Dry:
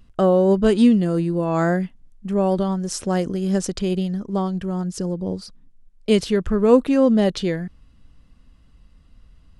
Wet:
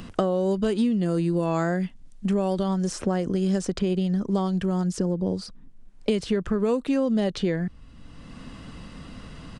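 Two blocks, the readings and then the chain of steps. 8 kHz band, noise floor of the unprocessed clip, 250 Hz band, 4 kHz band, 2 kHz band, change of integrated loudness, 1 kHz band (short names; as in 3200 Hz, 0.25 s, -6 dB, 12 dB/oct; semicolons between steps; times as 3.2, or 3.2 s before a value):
-5.5 dB, -52 dBFS, -4.5 dB, -4.5 dB, -4.5 dB, -5.5 dB, -5.0 dB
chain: compressor 4:1, threshold -21 dBFS, peak gain reduction 11 dB; downsampling 22050 Hz; three-band squash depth 70%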